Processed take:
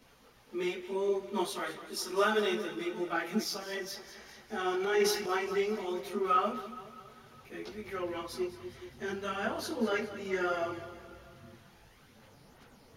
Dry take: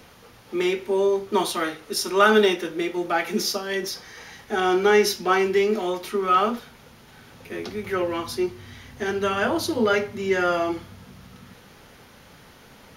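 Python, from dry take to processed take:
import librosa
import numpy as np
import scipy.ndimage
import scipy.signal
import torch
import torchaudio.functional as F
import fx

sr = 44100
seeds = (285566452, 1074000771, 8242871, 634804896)

y = fx.echo_feedback(x, sr, ms=204, feedback_pct=58, wet_db=-13.5)
y = fx.chorus_voices(y, sr, voices=6, hz=0.66, base_ms=18, depth_ms=4.7, mix_pct=60)
y = fx.transient(y, sr, attack_db=-6, sustain_db=6, at=(4.74, 5.38))
y = y * 10.0 ** (-8.0 / 20.0)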